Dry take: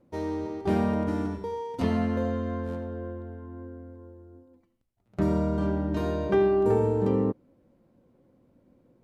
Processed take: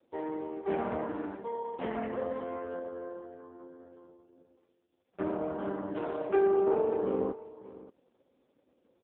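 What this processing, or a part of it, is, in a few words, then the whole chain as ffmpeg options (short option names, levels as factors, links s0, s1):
satellite phone: -af "highpass=380,lowpass=3100,aecho=1:1:579:0.133" -ar 8000 -c:a libopencore_amrnb -b:a 4750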